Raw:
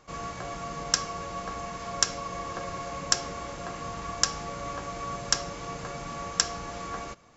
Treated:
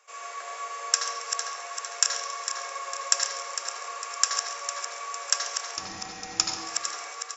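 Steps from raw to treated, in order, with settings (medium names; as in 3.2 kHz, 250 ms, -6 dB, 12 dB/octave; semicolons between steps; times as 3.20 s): backward echo that repeats 227 ms, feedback 69%, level -7 dB; steep high-pass 400 Hz 72 dB/octave; 5.77–6.57 s: frequency shift -370 Hz; feedback delay 137 ms, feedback 47%, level -15 dB; reverberation RT60 1.0 s, pre-delay 73 ms, DRR 2 dB; trim -1 dB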